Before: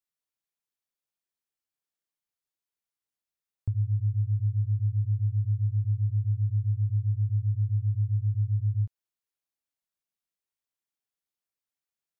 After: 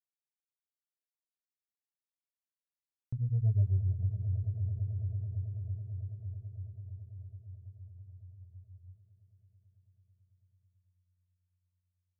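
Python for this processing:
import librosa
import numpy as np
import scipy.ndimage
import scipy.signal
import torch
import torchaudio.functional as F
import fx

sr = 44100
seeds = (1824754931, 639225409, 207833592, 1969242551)

y = fx.doppler_pass(x, sr, speed_mps=52, closest_m=11.0, pass_at_s=3.55)
y = fx.cheby_harmonics(y, sr, harmonics=(4, 6), levels_db=(-32, -27), full_scale_db=-20.0)
y = fx.echo_swell(y, sr, ms=110, loudest=8, wet_db=-15)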